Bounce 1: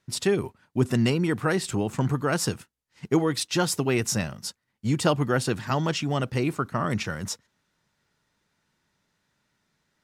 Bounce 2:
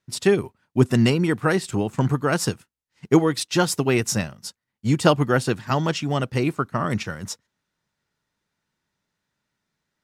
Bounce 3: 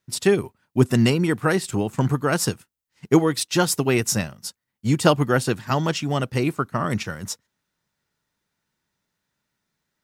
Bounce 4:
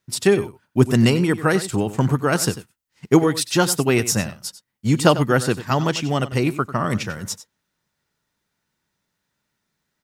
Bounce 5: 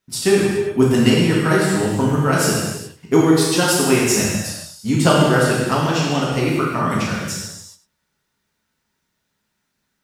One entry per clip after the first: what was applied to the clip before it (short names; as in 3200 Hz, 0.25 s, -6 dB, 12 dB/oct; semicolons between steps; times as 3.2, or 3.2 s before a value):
upward expander 1.5:1, over -42 dBFS; gain +6.5 dB
high shelf 11000 Hz +9.5 dB
echo 95 ms -14.5 dB; gain +2 dB
non-linear reverb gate 0.45 s falling, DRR -5 dB; gain -3 dB